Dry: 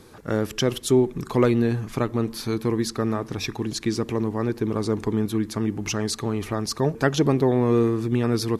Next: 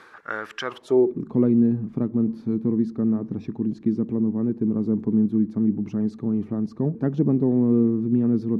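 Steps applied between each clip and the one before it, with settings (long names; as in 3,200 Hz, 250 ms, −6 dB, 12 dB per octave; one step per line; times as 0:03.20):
reversed playback
upward compression, threshold −24 dBFS
reversed playback
band-pass filter sweep 1,500 Hz → 210 Hz, 0:00.61–0:01.29
level +6.5 dB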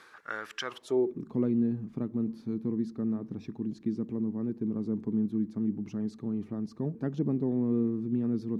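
high-shelf EQ 2,500 Hz +10 dB
level −9 dB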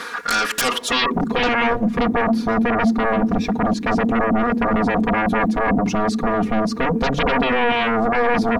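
sine wavefolder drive 19 dB, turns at −17.5 dBFS
comb filter 4.2 ms, depth 89%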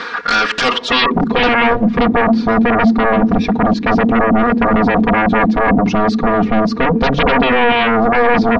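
low-pass filter 4,900 Hz 24 dB per octave
level +6 dB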